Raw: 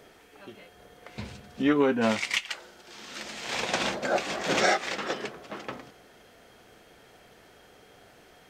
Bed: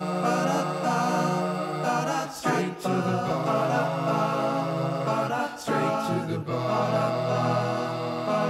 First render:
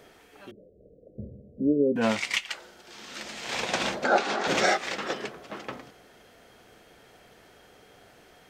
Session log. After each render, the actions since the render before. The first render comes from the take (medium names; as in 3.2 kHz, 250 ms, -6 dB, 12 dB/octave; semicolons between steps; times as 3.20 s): 0.51–1.96 s: steep low-pass 610 Hz 96 dB/octave; 4.04–4.48 s: cabinet simulation 190–8900 Hz, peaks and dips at 230 Hz +7 dB, 410 Hz +7 dB, 840 Hz +9 dB, 1.4 kHz +9 dB, 4 kHz +4 dB, 7.8 kHz -4 dB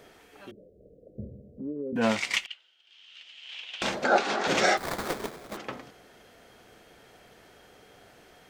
1.46–1.93 s: compression 2:1, threshold -41 dBFS; 2.46–3.82 s: band-pass filter 3 kHz, Q 6.9; 4.77–5.57 s: sample-rate reducer 2.8 kHz, jitter 20%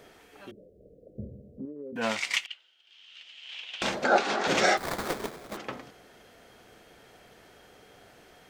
1.65–2.50 s: bass shelf 500 Hz -10 dB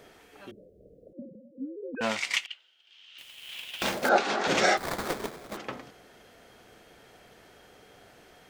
1.13–2.01 s: formants replaced by sine waves; 3.18–4.09 s: companded quantiser 4-bit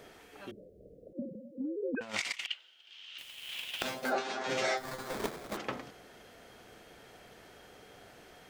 1.15–3.18 s: compressor with a negative ratio -35 dBFS, ratio -0.5; 3.82–5.14 s: feedback comb 130 Hz, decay 0.17 s, mix 100%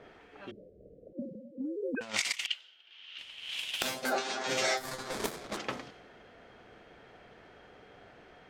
treble shelf 3.8 kHz +9.5 dB; level-controlled noise filter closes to 1.7 kHz, open at -30 dBFS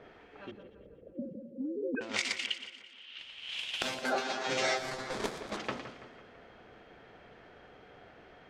distance through air 62 m; two-band feedback delay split 2.7 kHz, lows 166 ms, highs 118 ms, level -11.5 dB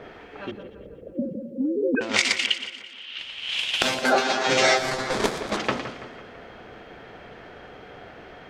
trim +11.5 dB